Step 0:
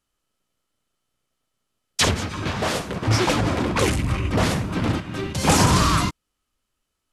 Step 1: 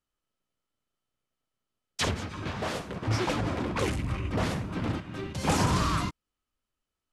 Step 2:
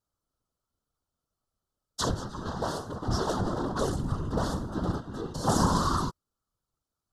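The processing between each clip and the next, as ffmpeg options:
-af "highshelf=f=4.6k:g=-6,volume=-8dB"
-af "asuperstop=centerf=2300:order=4:qfactor=0.81,equalizer=f=2k:t=o:w=2.1:g=5.5,afftfilt=real='hypot(re,im)*cos(2*PI*random(0))':imag='hypot(re,im)*sin(2*PI*random(1))':win_size=512:overlap=0.75,volume=6dB"

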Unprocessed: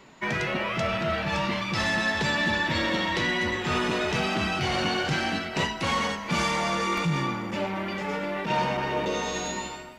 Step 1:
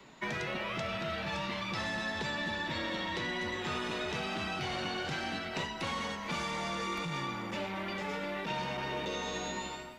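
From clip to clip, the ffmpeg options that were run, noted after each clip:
-filter_complex "[0:a]equalizer=f=3.7k:w=7.3:g=4.5,acrossover=split=85|400|1400|3100[a][b][c][d][e];[a]acompressor=threshold=-51dB:ratio=4[f];[b]acompressor=threshold=-38dB:ratio=4[g];[c]acompressor=threshold=-36dB:ratio=4[h];[d]acompressor=threshold=-39dB:ratio=4[i];[e]acompressor=threshold=-42dB:ratio=4[j];[f][g][h][i][j]amix=inputs=5:normalize=0,volume=-3.5dB"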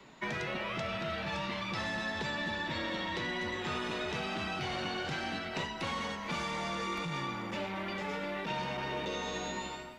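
-af "highshelf=f=6.9k:g=-4"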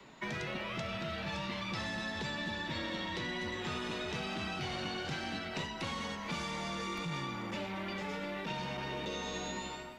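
-filter_complex "[0:a]acrossover=split=320|3000[a][b][c];[b]acompressor=threshold=-42dB:ratio=2[d];[a][d][c]amix=inputs=3:normalize=0"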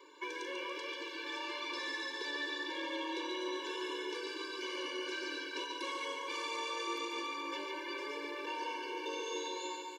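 -filter_complex "[0:a]asplit=2[a][b];[b]aecho=0:1:142|284|426|568|710|852|994:0.531|0.297|0.166|0.0932|0.0522|0.0292|0.0164[c];[a][c]amix=inputs=2:normalize=0,afftfilt=real='re*eq(mod(floor(b*sr/1024/300),2),1)':imag='im*eq(mod(floor(b*sr/1024/300),2),1)':win_size=1024:overlap=0.75,volume=1dB"

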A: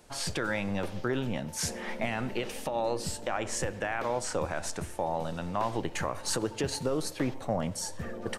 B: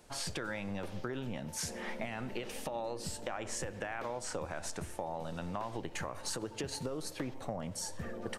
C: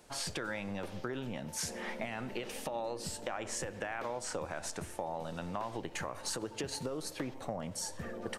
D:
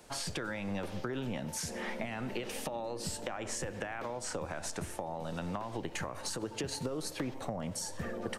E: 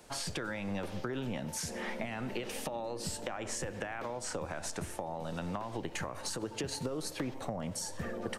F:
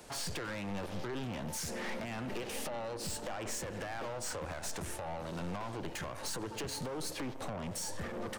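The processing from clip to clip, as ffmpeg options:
-af "acompressor=threshold=-32dB:ratio=6,volume=-2.5dB"
-af "lowshelf=f=120:g=-5.5,volume=1dB"
-filter_complex "[0:a]acrossover=split=290[a][b];[b]acompressor=threshold=-39dB:ratio=6[c];[a][c]amix=inputs=2:normalize=0,volume=3.5dB"
-af anull
-af "aeval=exprs='(tanh(112*val(0)+0.4)-tanh(0.4))/112':c=same,volume=5dB"

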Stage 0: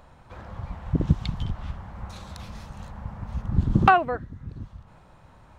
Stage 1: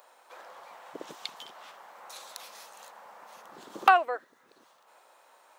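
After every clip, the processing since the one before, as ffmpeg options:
-af "highpass=f=450:w=0.5412,highpass=f=450:w=1.3066,aemphasis=mode=production:type=50fm,volume=-2.5dB"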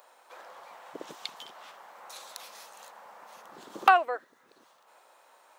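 -af anull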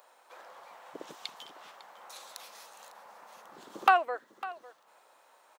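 -af "aecho=1:1:552:0.141,volume=-2.5dB"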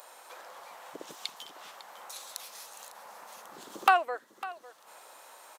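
-af "aemphasis=mode=production:type=cd,acompressor=mode=upward:threshold=-42dB:ratio=2.5" -ar 32000 -c:a ac3 -b:a 192k

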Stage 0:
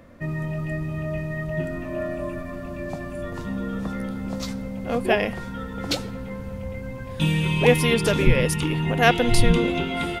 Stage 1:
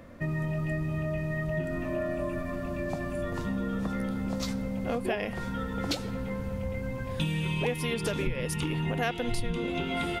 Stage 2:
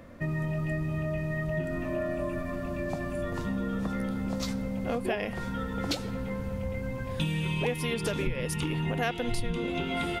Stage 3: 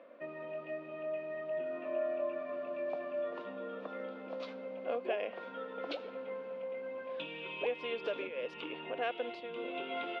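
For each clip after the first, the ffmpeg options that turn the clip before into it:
-af "acompressor=threshold=-27dB:ratio=6"
-af anull
-af "highpass=f=350:w=0.5412,highpass=f=350:w=1.3066,equalizer=f=360:t=q:w=4:g=-5,equalizer=f=580:t=q:w=4:g=4,equalizer=f=850:t=q:w=4:g=-6,equalizer=f=1.3k:t=q:w=4:g=-3,equalizer=f=1.9k:t=q:w=4:g=-9,lowpass=f=3k:w=0.5412,lowpass=f=3k:w=1.3066,volume=-3dB"

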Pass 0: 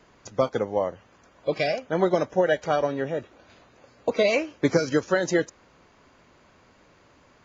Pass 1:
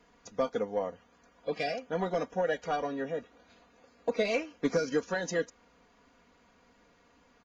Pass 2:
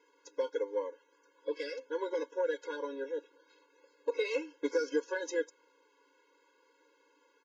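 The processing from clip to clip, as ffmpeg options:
-af "asoftclip=type=tanh:threshold=-11.5dB,aecho=1:1:4.2:0.69,volume=-8dB"
-af "afftfilt=real='re*eq(mod(floor(b*sr/1024/280),2),1)':imag='im*eq(mod(floor(b*sr/1024/280),2),1)':win_size=1024:overlap=0.75,volume=-1.5dB"

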